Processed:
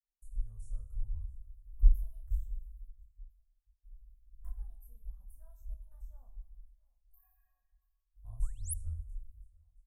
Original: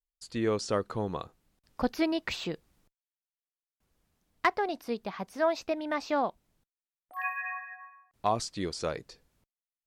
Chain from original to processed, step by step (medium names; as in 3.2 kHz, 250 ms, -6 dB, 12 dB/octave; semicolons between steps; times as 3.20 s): on a send: feedback delay 679 ms, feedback 50%, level -23.5 dB; on the sum: chorus voices 6, 1 Hz, delay 26 ms, depth 3 ms; treble shelf 9.5 kHz +8.5 dB; two-slope reverb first 0.8 s, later 2.5 s, from -27 dB, DRR 6 dB; painted sound rise, 8.42–8.74 s, 880–12000 Hz -23 dBFS; RIAA curve playback; expander -53 dBFS; inverse Chebyshev band-stop 140–5000 Hz, stop band 50 dB; trim +7 dB